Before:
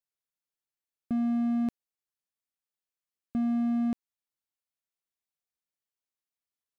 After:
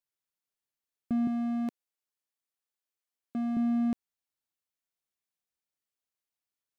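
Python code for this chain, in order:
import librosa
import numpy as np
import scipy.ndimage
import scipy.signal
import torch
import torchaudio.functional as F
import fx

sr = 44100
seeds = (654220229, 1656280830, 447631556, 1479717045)

y = fx.highpass(x, sr, hz=250.0, slope=12, at=(1.27, 3.57))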